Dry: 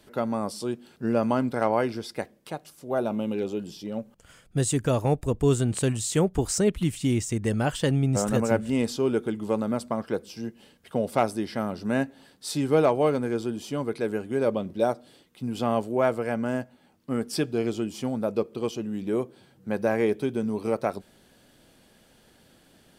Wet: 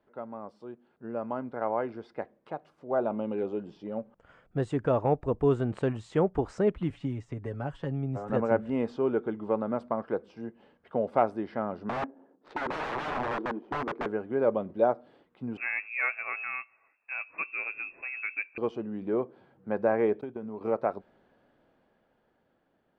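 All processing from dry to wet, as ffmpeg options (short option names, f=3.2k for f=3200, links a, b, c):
-filter_complex "[0:a]asettb=1/sr,asplit=3[a][b][c];[a]atrim=end=6.904[d];[b]atrim=start=6.9:end=8.3,asetpts=PTS-STARTPTS,afade=t=in:d=0.004:c=qsin,afade=t=out:st=1.396:d=0.004:c=qsin,acrossover=split=170|5400[e][f][g];[e]acompressor=threshold=-30dB:ratio=4[h];[f]acompressor=threshold=-34dB:ratio=4[i];[g]acompressor=threshold=-43dB:ratio=4[j];[h][i][j]amix=inputs=3:normalize=0,aecho=1:1:7.2:0.54,atrim=end_sample=61740[k];[c]atrim=start=8.296[l];[d][k]acrossfade=d=0.004:c1=hsin:c2=qsin[m];[m][l]acrossfade=d=0.004:c1=qsin:c2=hsin,asettb=1/sr,asplit=3[n][o][p];[n]atrim=end=11.894[q];[o]atrim=start=11.89:end=14.06,asetpts=PTS-STARTPTS,afade=t=in:d=0.004:c=qsin,afade=t=out:st=2.166:d=0.004:c=qsin,highpass=f=290:t=q:w=1.8,adynamicsmooth=sensitivity=6:basefreq=680,aeval=exprs='(mod(14.1*val(0)+1,2)-1)/14.1':c=same[r];[p]atrim=start=14.056[s];[q][r]acrossfade=d=0.004:c1=hsin:c2=qsin[t];[t][s]acrossfade=d=0.004:c1=qsin:c2=hsin,asettb=1/sr,asplit=3[u][v][w];[u]atrim=end=15.574[x];[v]atrim=start=15.57:end=18.58,asetpts=PTS-STARTPTS,afade=t=in:d=0.004:c=qsin,afade=t=out:st=3.006:d=0.004:c=qsin,asoftclip=type=hard:threshold=-13dB,lowpass=f=2.4k:t=q:w=0.5098,lowpass=f=2.4k:t=q:w=0.6013,lowpass=f=2.4k:t=q:w=0.9,lowpass=f=2.4k:t=q:w=2.563,afreqshift=-2800[y];[w]atrim=start=18.576[z];[x][y]acrossfade=d=0.004:c1=hsin:c2=qsin[aa];[aa][z]acrossfade=d=0.004:c1=qsin:c2=hsin,asettb=1/sr,asplit=3[ab][ac][ad];[ab]atrim=end=20.214[ae];[ac]atrim=start=20.21:end=20.61,asetpts=PTS-STARTPTS,afade=t=in:d=0.004:c=qsin,afade=t=out:st=0.396:d=0.004:c=qsin,agate=range=-33dB:threshold=-28dB:ratio=3:release=100:detection=peak,acompressor=threshold=-29dB:ratio=10:attack=3.2:release=140:knee=1:detection=peak[af];[ad]atrim=start=20.606[ag];[ae][af]acrossfade=d=0.004:c1=hsin:c2=qsin[ah];[ah][ag]acrossfade=d=0.004:c1=qsin:c2=hsin,lowpass=1.2k,lowshelf=f=340:g=-12,dynaudnorm=f=360:g=11:m=11.5dB,volume=-7.5dB"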